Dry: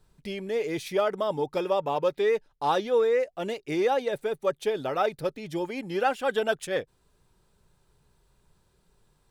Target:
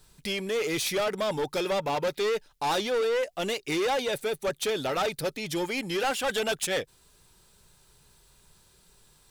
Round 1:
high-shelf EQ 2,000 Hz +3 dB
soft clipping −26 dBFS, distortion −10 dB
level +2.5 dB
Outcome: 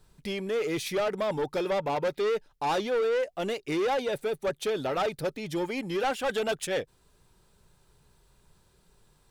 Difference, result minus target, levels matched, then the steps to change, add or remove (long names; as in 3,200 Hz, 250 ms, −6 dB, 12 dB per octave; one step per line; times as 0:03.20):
4,000 Hz band −5.0 dB
change: high-shelf EQ 2,000 Hz +13 dB